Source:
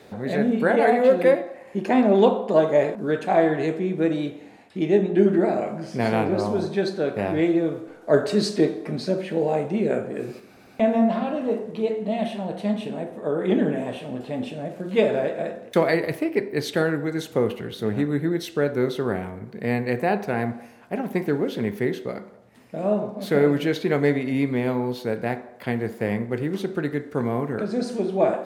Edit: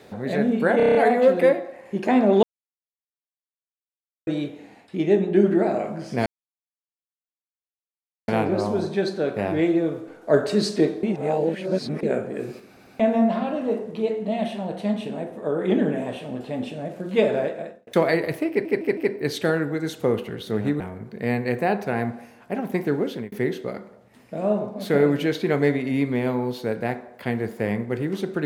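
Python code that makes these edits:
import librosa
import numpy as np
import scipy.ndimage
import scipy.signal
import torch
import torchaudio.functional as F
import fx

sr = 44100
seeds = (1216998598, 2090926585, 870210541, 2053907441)

y = fx.edit(x, sr, fx.stutter(start_s=0.77, slice_s=0.03, count=7),
    fx.silence(start_s=2.25, length_s=1.84),
    fx.insert_silence(at_s=6.08, length_s=2.02),
    fx.reverse_span(start_s=8.83, length_s=1.0),
    fx.fade_out_span(start_s=15.22, length_s=0.45),
    fx.stutter(start_s=16.29, slice_s=0.16, count=4),
    fx.cut(start_s=18.12, length_s=1.09),
    fx.fade_out_span(start_s=21.42, length_s=0.31, curve='qsin'), tone=tone)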